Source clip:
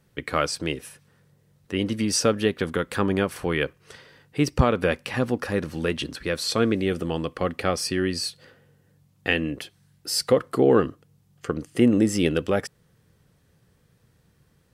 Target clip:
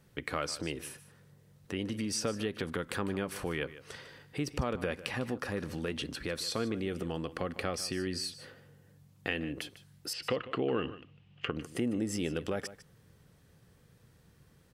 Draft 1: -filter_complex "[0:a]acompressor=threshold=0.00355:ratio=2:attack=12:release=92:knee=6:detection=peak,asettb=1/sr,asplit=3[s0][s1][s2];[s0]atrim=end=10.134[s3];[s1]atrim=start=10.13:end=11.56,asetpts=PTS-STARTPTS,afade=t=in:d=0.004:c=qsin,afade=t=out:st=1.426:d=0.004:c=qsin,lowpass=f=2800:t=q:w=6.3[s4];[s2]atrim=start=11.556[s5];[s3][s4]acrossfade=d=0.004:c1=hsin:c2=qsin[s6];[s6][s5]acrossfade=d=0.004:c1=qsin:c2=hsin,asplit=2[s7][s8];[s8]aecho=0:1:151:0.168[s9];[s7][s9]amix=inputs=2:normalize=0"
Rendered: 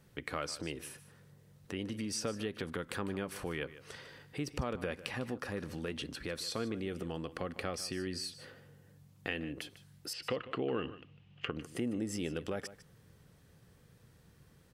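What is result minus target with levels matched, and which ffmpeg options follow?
compression: peak gain reduction +3.5 dB
-filter_complex "[0:a]acompressor=threshold=0.00794:ratio=2:attack=12:release=92:knee=6:detection=peak,asettb=1/sr,asplit=3[s0][s1][s2];[s0]atrim=end=10.134[s3];[s1]atrim=start=10.13:end=11.56,asetpts=PTS-STARTPTS,afade=t=in:d=0.004:c=qsin,afade=t=out:st=1.426:d=0.004:c=qsin,lowpass=f=2800:t=q:w=6.3[s4];[s2]atrim=start=11.556[s5];[s3][s4]acrossfade=d=0.004:c1=hsin:c2=qsin[s6];[s6][s5]acrossfade=d=0.004:c1=qsin:c2=hsin,asplit=2[s7][s8];[s8]aecho=0:1:151:0.168[s9];[s7][s9]amix=inputs=2:normalize=0"

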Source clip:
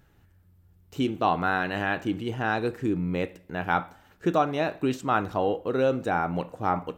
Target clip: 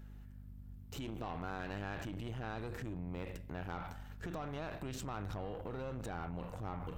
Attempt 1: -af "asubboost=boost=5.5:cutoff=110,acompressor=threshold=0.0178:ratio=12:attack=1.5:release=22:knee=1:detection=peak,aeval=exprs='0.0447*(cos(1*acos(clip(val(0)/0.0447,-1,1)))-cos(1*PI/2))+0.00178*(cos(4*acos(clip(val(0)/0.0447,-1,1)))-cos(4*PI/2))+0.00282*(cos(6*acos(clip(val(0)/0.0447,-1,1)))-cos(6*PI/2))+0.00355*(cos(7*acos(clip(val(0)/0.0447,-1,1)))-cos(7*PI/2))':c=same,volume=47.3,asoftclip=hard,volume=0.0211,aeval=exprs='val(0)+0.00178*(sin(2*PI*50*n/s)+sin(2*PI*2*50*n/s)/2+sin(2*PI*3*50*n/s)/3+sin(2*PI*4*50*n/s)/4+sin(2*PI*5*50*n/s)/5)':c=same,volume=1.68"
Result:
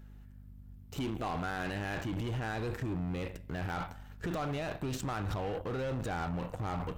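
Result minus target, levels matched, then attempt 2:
compression: peak gain reduction -6 dB
-af "asubboost=boost=5.5:cutoff=110,acompressor=threshold=0.00841:ratio=12:attack=1.5:release=22:knee=1:detection=peak,aeval=exprs='0.0447*(cos(1*acos(clip(val(0)/0.0447,-1,1)))-cos(1*PI/2))+0.00178*(cos(4*acos(clip(val(0)/0.0447,-1,1)))-cos(4*PI/2))+0.00282*(cos(6*acos(clip(val(0)/0.0447,-1,1)))-cos(6*PI/2))+0.00355*(cos(7*acos(clip(val(0)/0.0447,-1,1)))-cos(7*PI/2))':c=same,volume=47.3,asoftclip=hard,volume=0.0211,aeval=exprs='val(0)+0.00178*(sin(2*PI*50*n/s)+sin(2*PI*2*50*n/s)/2+sin(2*PI*3*50*n/s)/3+sin(2*PI*4*50*n/s)/4+sin(2*PI*5*50*n/s)/5)':c=same,volume=1.68"

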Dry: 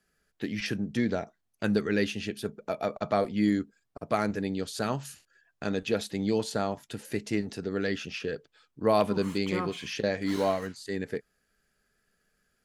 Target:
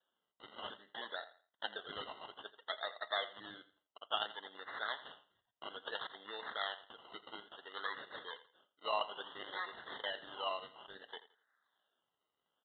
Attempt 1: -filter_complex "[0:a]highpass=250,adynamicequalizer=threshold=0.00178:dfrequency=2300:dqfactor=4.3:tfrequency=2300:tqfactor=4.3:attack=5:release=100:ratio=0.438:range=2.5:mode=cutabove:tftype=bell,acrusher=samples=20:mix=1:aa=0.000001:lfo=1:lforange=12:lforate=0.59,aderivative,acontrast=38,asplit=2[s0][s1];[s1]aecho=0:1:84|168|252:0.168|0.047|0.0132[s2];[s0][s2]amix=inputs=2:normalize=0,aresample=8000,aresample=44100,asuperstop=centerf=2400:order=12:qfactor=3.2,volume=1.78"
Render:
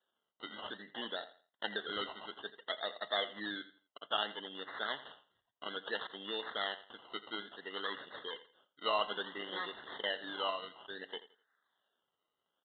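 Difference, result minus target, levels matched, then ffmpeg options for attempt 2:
250 Hz band +7.0 dB
-filter_complex "[0:a]highpass=690,adynamicequalizer=threshold=0.00178:dfrequency=2300:dqfactor=4.3:tfrequency=2300:tqfactor=4.3:attack=5:release=100:ratio=0.438:range=2.5:mode=cutabove:tftype=bell,acrusher=samples=20:mix=1:aa=0.000001:lfo=1:lforange=12:lforate=0.59,aderivative,acontrast=38,asplit=2[s0][s1];[s1]aecho=0:1:84|168|252:0.168|0.047|0.0132[s2];[s0][s2]amix=inputs=2:normalize=0,aresample=8000,aresample=44100,asuperstop=centerf=2400:order=12:qfactor=3.2,volume=1.78"

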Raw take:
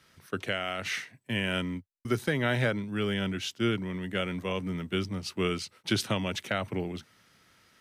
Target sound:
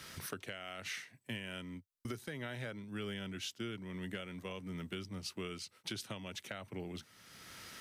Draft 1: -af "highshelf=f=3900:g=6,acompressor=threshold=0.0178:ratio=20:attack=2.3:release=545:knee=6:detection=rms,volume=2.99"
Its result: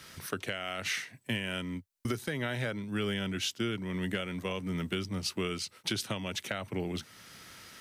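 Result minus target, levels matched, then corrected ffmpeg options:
compression: peak gain reduction -9 dB
-af "highshelf=f=3900:g=6,acompressor=threshold=0.00596:ratio=20:attack=2.3:release=545:knee=6:detection=rms,volume=2.99"

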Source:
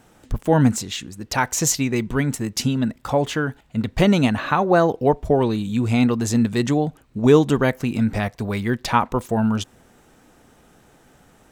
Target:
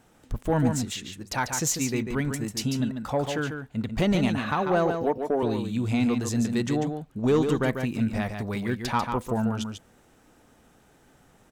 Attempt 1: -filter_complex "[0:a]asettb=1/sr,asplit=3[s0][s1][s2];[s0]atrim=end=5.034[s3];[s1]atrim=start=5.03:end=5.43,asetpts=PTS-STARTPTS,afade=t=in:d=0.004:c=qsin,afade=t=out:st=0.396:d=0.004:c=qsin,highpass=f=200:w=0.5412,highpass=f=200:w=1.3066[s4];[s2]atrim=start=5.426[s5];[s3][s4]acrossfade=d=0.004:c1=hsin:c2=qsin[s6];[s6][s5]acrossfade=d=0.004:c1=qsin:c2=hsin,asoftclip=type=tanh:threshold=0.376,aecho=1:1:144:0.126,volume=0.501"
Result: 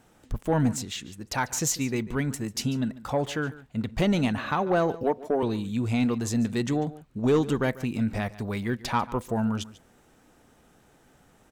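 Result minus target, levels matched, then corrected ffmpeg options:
echo-to-direct -11.5 dB
-filter_complex "[0:a]asettb=1/sr,asplit=3[s0][s1][s2];[s0]atrim=end=5.034[s3];[s1]atrim=start=5.03:end=5.43,asetpts=PTS-STARTPTS,afade=t=in:d=0.004:c=qsin,afade=t=out:st=0.396:d=0.004:c=qsin,highpass=f=200:w=0.5412,highpass=f=200:w=1.3066[s4];[s2]atrim=start=5.426[s5];[s3][s4]acrossfade=d=0.004:c1=hsin:c2=qsin[s6];[s6][s5]acrossfade=d=0.004:c1=qsin:c2=hsin,asoftclip=type=tanh:threshold=0.376,aecho=1:1:144:0.473,volume=0.501"

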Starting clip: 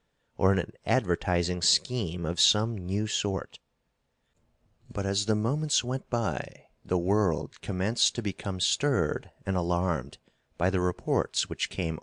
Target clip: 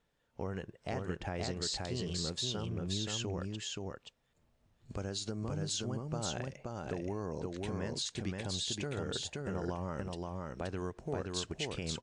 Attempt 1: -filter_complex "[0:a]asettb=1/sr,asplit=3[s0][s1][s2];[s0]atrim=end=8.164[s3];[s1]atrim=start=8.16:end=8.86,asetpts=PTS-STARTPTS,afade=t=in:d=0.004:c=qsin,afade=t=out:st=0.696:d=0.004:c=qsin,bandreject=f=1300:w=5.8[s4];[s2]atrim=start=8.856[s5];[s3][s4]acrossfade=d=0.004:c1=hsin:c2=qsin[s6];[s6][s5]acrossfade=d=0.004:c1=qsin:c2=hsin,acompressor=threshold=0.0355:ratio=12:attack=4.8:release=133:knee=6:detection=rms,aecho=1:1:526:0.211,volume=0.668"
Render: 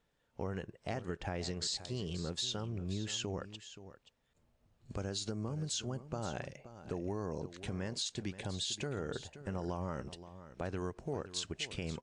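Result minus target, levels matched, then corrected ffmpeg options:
echo-to-direct -11 dB
-filter_complex "[0:a]asettb=1/sr,asplit=3[s0][s1][s2];[s0]atrim=end=8.164[s3];[s1]atrim=start=8.16:end=8.86,asetpts=PTS-STARTPTS,afade=t=in:d=0.004:c=qsin,afade=t=out:st=0.696:d=0.004:c=qsin,bandreject=f=1300:w=5.8[s4];[s2]atrim=start=8.856[s5];[s3][s4]acrossfade=d=0.004:c1=hsin:c2=qsin[s6];[s6][s5]acrossfade=d=0.004:c1=qsin:c2=hsin,acompressor=threshold=0.0355:ratio=12:attack=4.8:release=133:knee=6:detection=rms,aecho=1:1:526:0.75,volume=0.668"

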